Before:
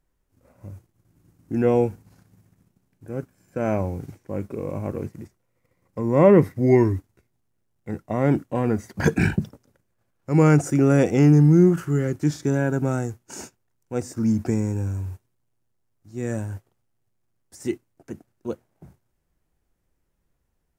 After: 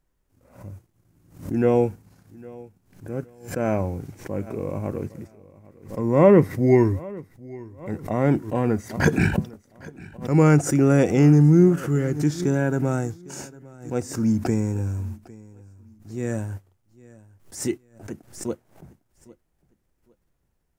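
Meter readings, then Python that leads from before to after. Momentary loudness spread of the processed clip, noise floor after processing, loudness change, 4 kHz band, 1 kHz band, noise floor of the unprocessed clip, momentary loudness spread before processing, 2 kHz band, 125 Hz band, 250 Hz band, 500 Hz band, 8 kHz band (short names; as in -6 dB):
22 LU, -71 dBFS, 0.0 dB, n/a, +0.5 dB, -72 dBFS, 20 LU, +1.0 dB, 0.0 dB, 0.0 dB, 0.0 dB, +3.5 dB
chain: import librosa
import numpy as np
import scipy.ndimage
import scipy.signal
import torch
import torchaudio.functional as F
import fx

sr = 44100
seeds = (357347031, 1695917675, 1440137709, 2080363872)

y = fx.echo_feedback(x, sr, ms=805, feedback_pct=30, wet_db=-21.5)
y = fx.pre_swell(y, sr, db_per_s=130.0)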